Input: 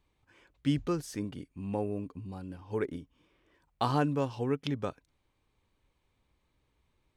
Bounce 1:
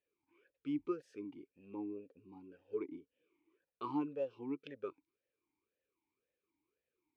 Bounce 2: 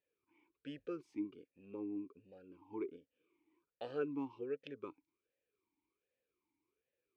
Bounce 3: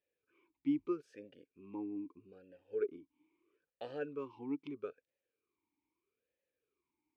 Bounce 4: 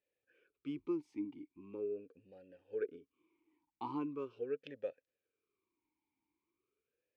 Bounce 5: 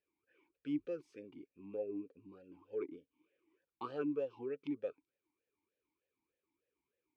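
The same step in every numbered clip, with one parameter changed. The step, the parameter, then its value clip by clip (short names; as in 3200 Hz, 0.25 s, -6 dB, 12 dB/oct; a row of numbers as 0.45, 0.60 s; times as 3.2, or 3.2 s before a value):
vowel sweep, rate: 1.9, 1.3, 0.78, 0.41, 3.3 Hz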